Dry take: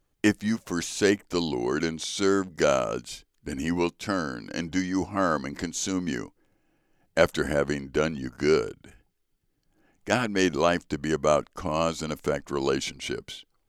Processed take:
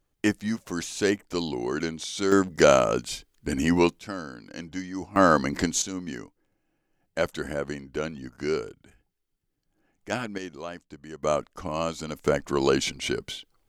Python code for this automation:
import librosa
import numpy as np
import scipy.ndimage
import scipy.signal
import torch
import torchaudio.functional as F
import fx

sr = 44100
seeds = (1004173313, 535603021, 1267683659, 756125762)

y = fx.gain(x, sr, db=fx.steps((0.0, -2.0), (2.32, 5.0), (3.99, -7.0), (5.16, 6.0), (5.82, -5.5), (10.38, -14.5), (11.23, -3.0), (12.27, 3.5)))